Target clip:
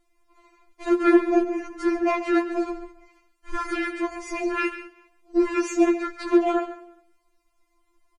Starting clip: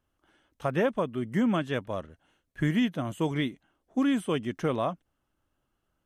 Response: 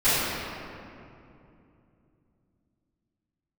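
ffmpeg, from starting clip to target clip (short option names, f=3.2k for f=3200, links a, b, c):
-filter_complex "[0:a]equalizer=f=92:w=1.4:g=7.5,aeval=exprs='(tanh(12.6*val(0)+0.6)-tanh(0.6))/12.6':c=same,asplit=2[a][b];[b]aecho=0:1:148|296:0.0891|0.0196[c];[a][c]amix=inputs=2:normalize=0,aeval=exprs='val(0)*sin(2*PI*54*n/s)':c=same,flanger=delay=6.4:depth=6.2:regen=86:speed=0.46:shape=triangular,asetrate=32634,aresample=44100,asplit=2[d][e];[e]aecho=0:1:138:0.224[f];[d][f]amix=inputs=2:normalize=0,alimiter=level_in=25dB:limit=-1dB:release=50:level=0:latency=1,afftfilt=real='re*4*eq(mod(b,16),0)':imag='im*4*eq(mod(b,16),0)':win_size=2048:overlap=0.75,volume=-3dB"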